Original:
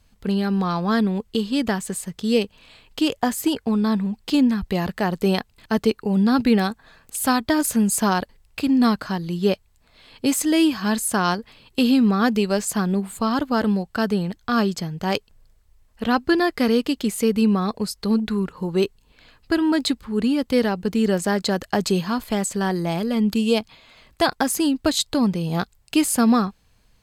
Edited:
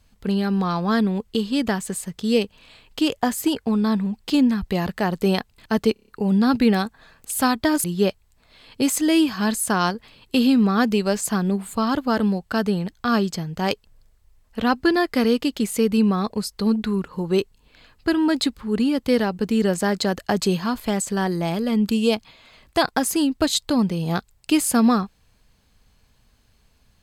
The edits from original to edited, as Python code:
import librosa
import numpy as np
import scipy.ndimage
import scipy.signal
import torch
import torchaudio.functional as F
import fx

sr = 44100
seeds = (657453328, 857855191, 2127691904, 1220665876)

y = fx.edit(x, sr, fx.stutter(start_s=5.93, slice_s=0.03, count=6),
    fx.cut(start_s=7.69, length_s=1.59), tone=tone)